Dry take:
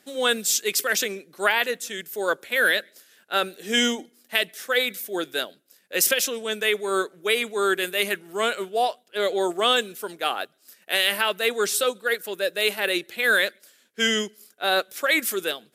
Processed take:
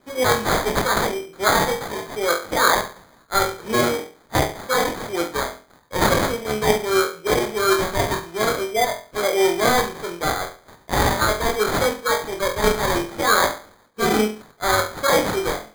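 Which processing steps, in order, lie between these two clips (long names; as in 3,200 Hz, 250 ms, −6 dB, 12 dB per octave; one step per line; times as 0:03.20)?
flutter between parallel walls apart 4 metres, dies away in 0.38 s
decimation without filtering 16×
level +1.5 dB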